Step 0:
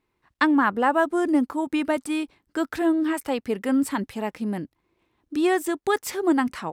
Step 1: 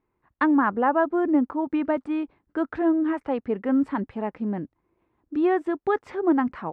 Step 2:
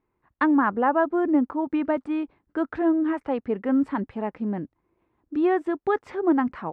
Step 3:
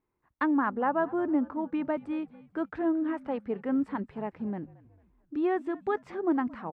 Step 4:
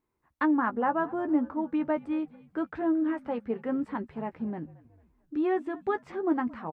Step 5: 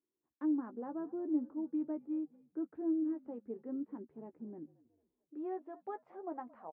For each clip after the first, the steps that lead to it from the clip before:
low-pass 1.5 kHz 12 dB/octave
no audible change
frequency-shifting echo 224 ms, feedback 46%, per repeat -55 Hz, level -20.5 dB; trim -6 dB
doubling 13 ms -8.5 dB
band-pass sweep 330 Hz -> 660 Hz, 4.78–5.82 s; trim -6.5 dB

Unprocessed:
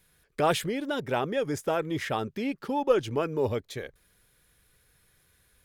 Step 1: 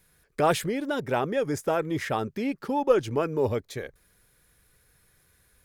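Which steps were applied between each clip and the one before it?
peaking EQ 3.2 kHz -4.5 dB 0.69 oct; trim +2 dB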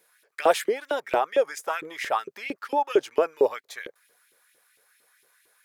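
LFO high-pass saw up 4.4 Hz 360–3000 Hz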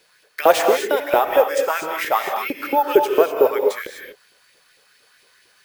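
careless resampling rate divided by 3×, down none, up hold; gated-style reverb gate 270 ms rising, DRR 3.5 dB; trim +6 dB

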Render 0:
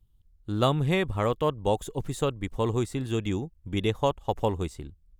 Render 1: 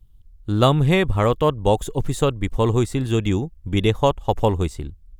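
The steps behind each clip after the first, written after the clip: bass shelf 70 Hz +7.5 dB; trim +7 dB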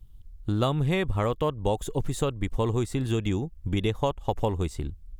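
compression 2.5:1, threshold -29 dBFS, peak gain reduction 12.5 dB; trim +2 dB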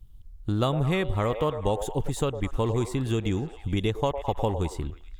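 repeats whose band climbs or falls 106 ms, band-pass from 600 Hz, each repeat 0.7 oct, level -6.5 dB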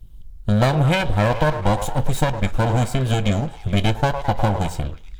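comb filter that takes the minimum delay 1.3 ms; reverberation RT60 0.25 s, pre-delay 3 ms, DRR 11.5 dB; trim +7.5 dB

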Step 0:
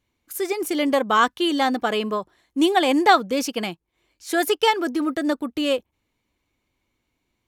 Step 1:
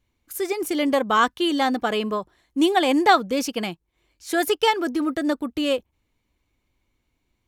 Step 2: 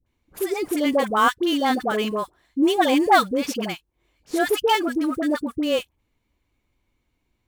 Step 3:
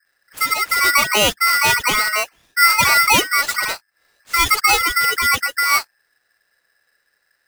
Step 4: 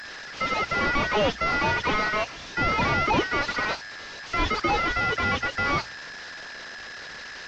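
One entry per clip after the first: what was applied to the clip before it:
bass shelf 83 Hz +10.5 dB; trim -1 dB
in parallel at -9 dB: sample-rate reducer 9.5 kHz, jitter 20%; on the sum: phase dispersion highs, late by 64 ms, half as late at 840 Hz; trim -2 dB
loudness maximiser +10.5 dB; polarity switched at an audio rate 1.7 kHz; trim -5 dB
one-bit delta coder 32 kbps, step -31 dBFS; hum notches 60/120 Hz; trim -2 dB

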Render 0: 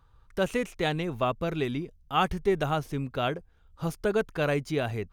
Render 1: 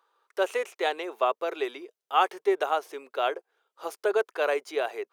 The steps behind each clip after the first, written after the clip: elliptic high-pass 380 Hz, stop band 80 dB; dynamic bell 820 Hz, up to +4 dB, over -39 dBFS, Q 0.8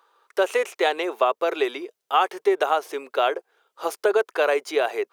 compression 2.5:1, threshold -26 dBFS, peak gain reduction 7 dB; trim +8.5 dB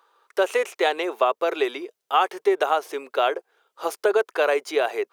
no audible change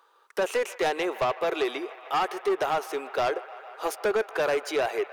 saturation -20 dBFS, distortion -10 dB; feedback echo behind a band-pass 152 ms, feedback 85%, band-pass 1.4 kHz, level -16 dB

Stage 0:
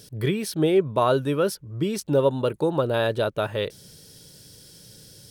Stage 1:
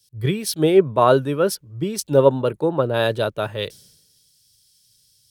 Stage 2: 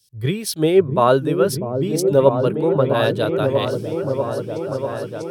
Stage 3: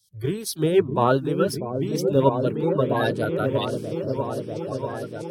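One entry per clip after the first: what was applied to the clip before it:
three bands expanded up and down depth 100%; trim +3 dB
delay with an opening low-pass 644 ms, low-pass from 400 Hz, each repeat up 1 oct, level -3 dB
coarse spectral quantiser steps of 30 dB; trim -4 dB

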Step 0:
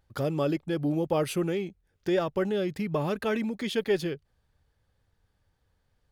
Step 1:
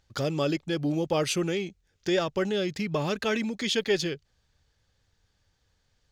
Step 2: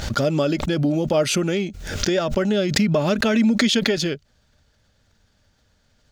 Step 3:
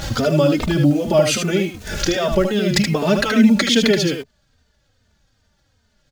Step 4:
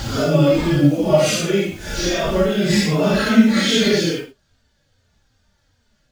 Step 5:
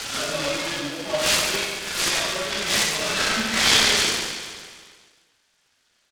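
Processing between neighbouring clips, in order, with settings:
FFT filter 990 Hz 0 dB, 6.7 kHz +12 dB, 10 kHz -3 dB
compression 4:1, threshold -27 dBFS, peak gain reduction 6.5 dB; small resonant body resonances 230/610/1400 Hz, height 9 dB, ringing for 45 ms; swell ahead of each attack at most 57 dB/s; trim +7 dB
delay 76 ms -6 dB; in parallel at -5 dB: bit crusher 6-bit; on the sum: endless flanger 3.1 ms -2.5 Hz; trim +1.5 dB
phase randomisation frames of 200 ms
band-pass filter 3.9 kHz, Q 1; on a send: feedback delay 142 ms, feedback 59%, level -7 dB; on the sum: delay time shaken by noise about 1.3 kHz, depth 0.051 ms; trim +4.5 dB

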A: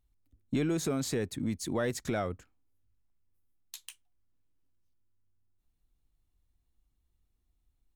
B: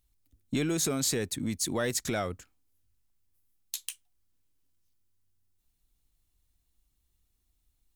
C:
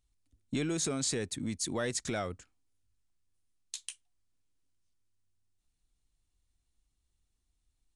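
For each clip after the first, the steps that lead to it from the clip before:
treble shelf 2.7 kHz +11 dB
resampled via 22.05 kHz; trim -3.5 dB

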